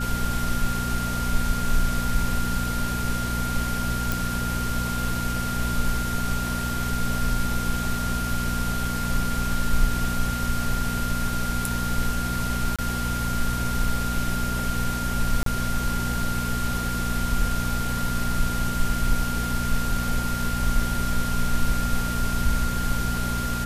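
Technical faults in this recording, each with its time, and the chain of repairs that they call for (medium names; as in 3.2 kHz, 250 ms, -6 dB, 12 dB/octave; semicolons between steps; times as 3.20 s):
hum 60 Hz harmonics 4 -29 dBFS
whine 1.4 kHz -30 dBFS
4.12 s: pop
12.76–12.79 s: dropout 26 ms
15.43–15.46 s: dropout 33 ms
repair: de-click; band-stop 1.4 kHz, Q 30; de-hum 60 Hz, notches 4; interpolate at 12.76 s, 26 ms; interpolate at 15.43 s, 33 ms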